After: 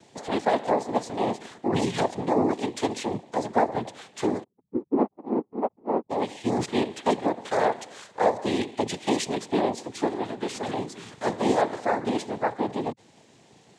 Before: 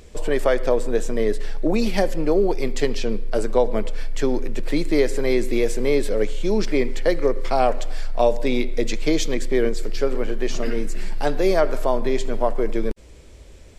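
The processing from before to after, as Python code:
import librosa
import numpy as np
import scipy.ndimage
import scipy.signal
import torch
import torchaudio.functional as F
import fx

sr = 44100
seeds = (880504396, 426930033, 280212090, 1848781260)

y = fx.spec_expand(x, sr, power=3.3, at=(4.42, 6.09), fade=0.02)
y = fx.noise_vocoder(y, sr, seeds[0], bands=6)
y = y * 10.0 ** (-3.5 / 20.0)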